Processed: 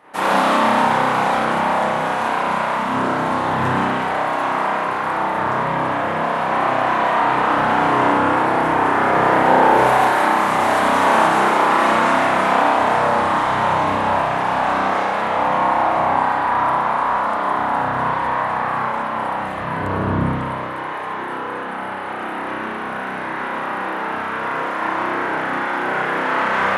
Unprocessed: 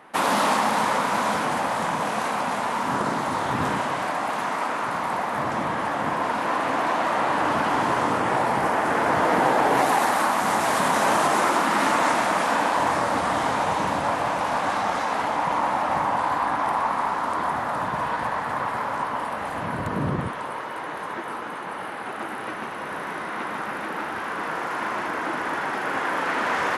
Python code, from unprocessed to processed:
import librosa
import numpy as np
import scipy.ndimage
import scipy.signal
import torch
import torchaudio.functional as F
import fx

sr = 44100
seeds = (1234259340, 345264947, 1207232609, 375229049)

y = fx.rev_spring(x, sr, rt60_s=1.2, pass_ms=(31,), chirp_ms=25, drr_db=-8.5)
y = y * 10.0 ** (-3.5 / 20.0)